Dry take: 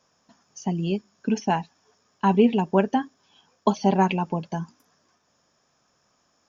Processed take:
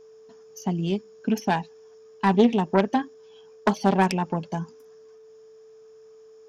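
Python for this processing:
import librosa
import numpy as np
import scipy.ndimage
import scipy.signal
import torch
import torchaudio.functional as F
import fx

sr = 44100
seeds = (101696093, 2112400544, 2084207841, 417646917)

y = fx.self_delay(x, sr, depth_ms=0.26)
y = y + 10.0 ** (-47.0 / 20.0) * np.sin(2.0 * np.pi * 440.0 * np.arange(len(y)) / sr)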